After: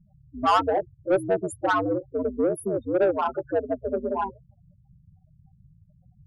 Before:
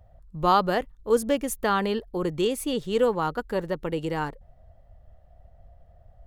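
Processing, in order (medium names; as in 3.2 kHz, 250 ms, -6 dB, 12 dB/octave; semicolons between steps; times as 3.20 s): ring modulator 94 Hz; loudest bins only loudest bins 8; overdrive pedal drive 18 dB, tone 5.8 kHz, clips at -11.5 dBFS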